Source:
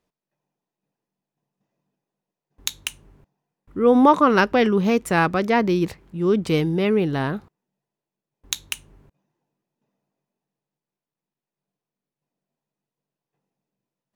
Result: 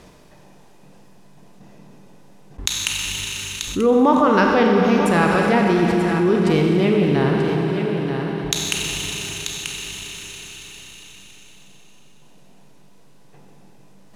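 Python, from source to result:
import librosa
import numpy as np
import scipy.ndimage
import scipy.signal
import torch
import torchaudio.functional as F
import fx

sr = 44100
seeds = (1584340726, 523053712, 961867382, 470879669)

p1 = scipy.signal.sosfilt(scipy.signal.butter(2, 11000.0, 'lowpass', fs=sr, output='sos'), x)
p2 = fx.low_shelf(p1, sr, hz=160.0, db=5.0)
p3 = p2 + fx.echo_single(p2, sr, ms=936, db=-12.5, dry=0)
p4 = fx.rev_schroeder(p3, sr, rt60_s=3.3, comb_ms=31, drr_db=1.0)
p5 = fx.env_flatten(p4, sr, amount_pct=50)
y = F.gain(torch.from_numpy(p5), -3.5).numpy()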